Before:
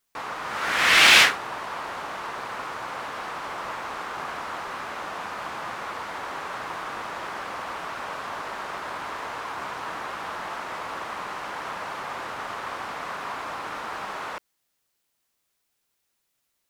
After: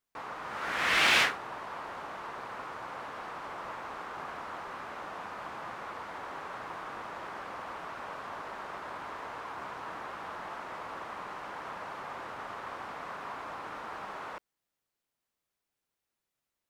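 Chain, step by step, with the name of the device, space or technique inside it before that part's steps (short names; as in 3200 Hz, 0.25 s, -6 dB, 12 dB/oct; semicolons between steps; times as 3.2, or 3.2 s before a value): behind a face mask (high shelf 2300 Hz -7.5 dB); gain -6 dB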